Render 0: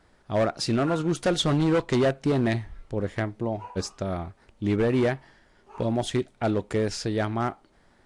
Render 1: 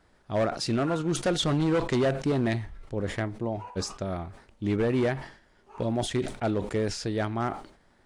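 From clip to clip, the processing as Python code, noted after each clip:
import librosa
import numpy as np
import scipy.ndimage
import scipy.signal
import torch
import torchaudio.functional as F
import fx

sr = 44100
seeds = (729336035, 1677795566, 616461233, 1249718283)

y = fx.sustainer(x, sr, db_per_s=110.0)
y = y * 10.0 ** (-2.5 / 20.0)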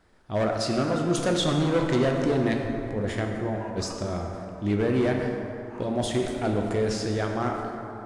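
y = fx.rev_plate(x, sr, seeds[0], rt60_s=3.1, hf_ratio=0.45, predelay_ms=0, drr_db=1.5)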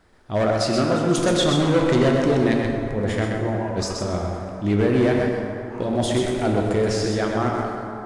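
y = x + 10.0 ** (-5.5 / 20.0) * np.pad(x, (int(127 * sr / 1000.0), 0))[:len(x)]
y = y * 10.0 ** (4.0 / 20.0)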